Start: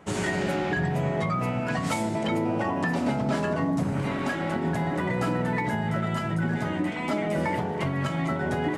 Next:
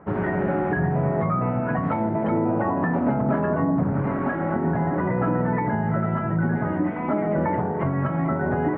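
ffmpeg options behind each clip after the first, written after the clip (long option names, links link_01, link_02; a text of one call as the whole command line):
ffmpeg -i in.wav -af "lowpass=frequency=1600:width=0.5412,lowpass=frequency=1600:width=1.3066,volume=4dB" out.wav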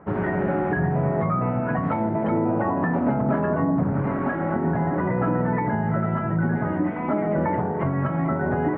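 ffmpeg -i in.wav -af anull out.wav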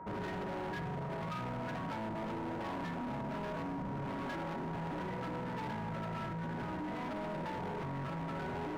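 ffmpeg -i in.wav -af "alimiter=limit=-21dB:level=0:latency=1:release=43,asoftclip=type=hard:threshold=-33dB,aeval=exprs='val(0)+0.00891*sin(2*PI*950*n/s)':channel_layout=same,volume=-5dB" out.wav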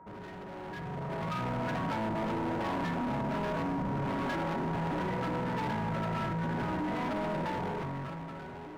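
ffmpeg -i in.wav -af "dynaudnorm=framelen=160:gausssize=13:maxgain=12dB,volume=-5.5dB" out.wav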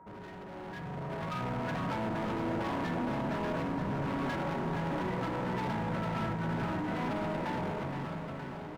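ffmpeg -i in.wav -af "aecho=1:1:468|936|1404|1872|2340|2808|3276|3744:0.398|0.239|0.143|0.086|0.0516|0.031|0.0186|0.0111,volume=-1.5dB" out.wav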